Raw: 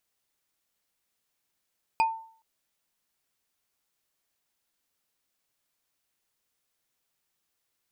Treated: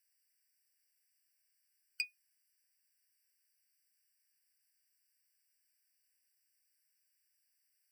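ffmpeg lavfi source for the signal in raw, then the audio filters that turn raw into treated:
-f lavfi -i "aevalsrc='0.133*pow(10,-3*t/0.5)*sin(2*PI*897*t)+0.0596*pow(10,-3*t/0.148)*sin(2*PI*2473*t)+0.0266*pow(10,-3*t/0.066)*sin(2*PI*4847.4*t)+0.0119*pow(10,-3*t/0.036)*sin(2*PI*8012.9*t)+0.00531*pow(10,-3*t/0.022)*sin(2*PI*11966*t)':duration=0.42:sample_rate=44100"
-filter_complex "[0:a]highshelf=frequency=4300:gain=-11,acrossover=split=2600[link_01][link_02];[link_02]aexciter=amount=4:drive=3.9:freq=3900[link_03];[link_01][link_03]amix=inputs=2:normalize=0,afftfilt=real='re*eq(mod(floor(b*sr/1024/1500),2),1)':imag='im*eq(mod(floor(b*sr/1024/1500),2),1)':win_size=1024:overlap=0.75"

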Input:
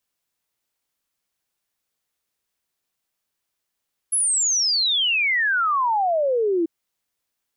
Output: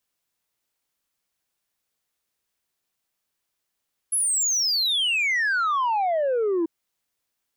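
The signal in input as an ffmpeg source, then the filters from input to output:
-f lavfi -i "aevalsrc='0.133*clip(min(t,2.54-t)/0.01,0,1)*sin(2*PI*11000*2.54/log(320/11000)*(exp(log(320/11000)*t/2.54)-1))':duration=2.54:sample_rate=44100"
-af "asoftclip=type=tanh:threshold=-19dB"

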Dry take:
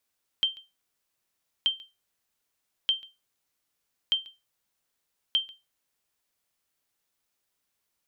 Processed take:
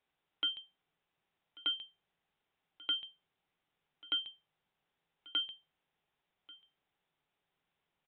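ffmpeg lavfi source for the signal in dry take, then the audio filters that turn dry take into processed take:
-f lavfi -i "aevalsrc='0.158*(sin(2*PI*3140*mod(t,1.23))*exp(-6.91*mod(t,1.23)/0.23)+0.0841*sin(2*PI*3140*max(mod(t,1.23)-0.14,0))*exp(-6.91*max(mod(t,1.23)-0.14,0)/0.23))':duration=6.15:sample_rate=44100"
-af "equalizer=frequency=160:width_type=o:width=0.33:gain=10,equalizer=frequency=400:width_type=o:width=0.33:gain=4,equalizer=frequency=800:width_type=o:width=0.33:gain=6,aresample=8000,asoftclip=type=tanh:threshold=-29dB,aresample=44100,aecho=1:1:1139:0.0841"

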